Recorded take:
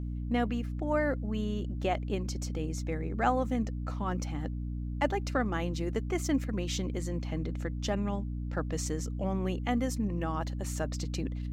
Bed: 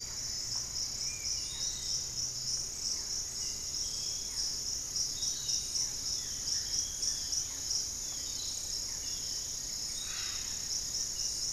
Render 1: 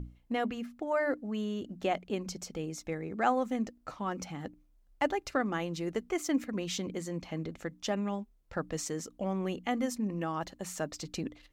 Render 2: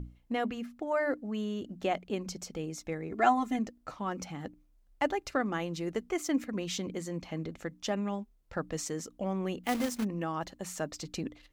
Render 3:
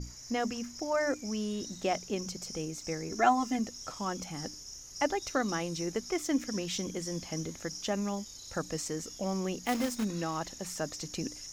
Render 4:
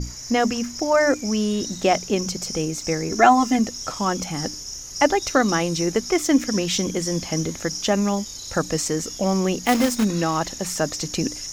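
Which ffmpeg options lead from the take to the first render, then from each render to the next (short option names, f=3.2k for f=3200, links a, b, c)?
-af "bandreject=f=60:t=h:w=6,bandreject=f=120:t=h:w=6,bandreject=f=180:t=h:w=6,bandreject=f=240:t=h:w=6,bandreject=f=300:t=h:w=6"
-filter_complex "[0:a]asettb=1/sr,asplit=3[a][b][c];[a]atrim=end=3.124[d];[b]atrim=start=3.12:end=3.59,asetpts=PTS-STARTPTS,afade=t=in:d=0.004:c=qsin,afade=t=out:st=0.466:d=0.004:c=qsin,aecho=1:1:2.9:0.99,atrim=end_sample=20727[e];[c]atrim=start=3.586[f];[d][e]acrossfade=d=0.004:c1=hsin:c2=qsin[g];[g][f]acrossfade=d=0.004:c1=qsin:c2=hsin,asplit=3[h][i][j];[h]afade=t=out:st=9.63:d=0.02[k];[i]acrusher=bits=2:mode=log:mix=0:aa=0.000001,afade=t=in:st=9.63:d=0.02,afade=t=out:st=10.03:d=0.02[l];[j]afade=t=in:st=10.03:d=0.02[m];[k][l][m]amix=inputs=3:normalize=0"
-filter_complex "[1:a]volume=-10dB[a];[0:a][a]amix=inputs=2:normalize=0"
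-af "volume=12dB,alimiter=limit=-3dB:level=0:latency=1"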